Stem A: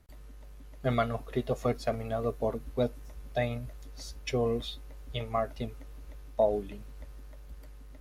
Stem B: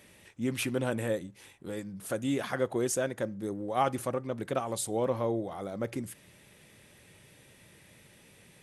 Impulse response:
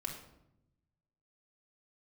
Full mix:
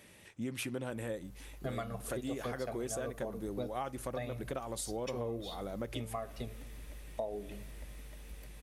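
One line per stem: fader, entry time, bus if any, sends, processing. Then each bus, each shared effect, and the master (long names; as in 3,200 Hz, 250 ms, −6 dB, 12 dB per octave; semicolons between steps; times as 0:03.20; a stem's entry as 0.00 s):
−9.0 dB, 0.80 s, send −11.5 dB, high-shelf EQ 7,000 Hz +9.5 dB; automatic gain control gain up to 4.5 dB
−1.0 dB, 0.00 s, no send, no processing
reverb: on, RT60 0.85 s, pre-delay 3 ms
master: downward compressor 4 to 1, threshold −36 dBFS, peak gain reduction 11.5 dB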